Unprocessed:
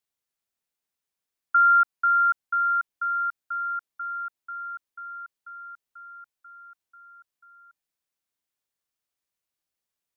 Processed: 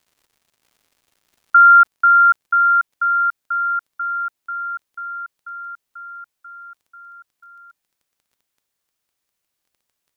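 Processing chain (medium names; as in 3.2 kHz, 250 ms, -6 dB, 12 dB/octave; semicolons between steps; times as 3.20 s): crackle 230 per s -57 dBFS, from 1.66 s 49 per s, from 3.12 s 11 per s; trim +9 dB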